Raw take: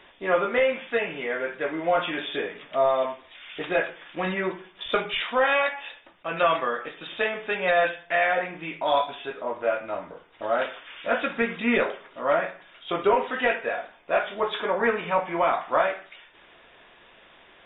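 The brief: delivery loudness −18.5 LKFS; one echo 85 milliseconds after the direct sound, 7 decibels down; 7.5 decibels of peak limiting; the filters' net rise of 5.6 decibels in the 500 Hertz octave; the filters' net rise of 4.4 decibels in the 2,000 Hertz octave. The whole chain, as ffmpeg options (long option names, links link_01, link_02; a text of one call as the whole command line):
ffmpeg -i in.wav -af "equalizer=frequency=500:width_type=o:gain=6.5,equalizer=frequency=2000:width_type=o:gain=5,alimiter=limit=-12.5dB:level=0:latency=1,aecho=1:1:85:0.447,volume=5dB" out.wav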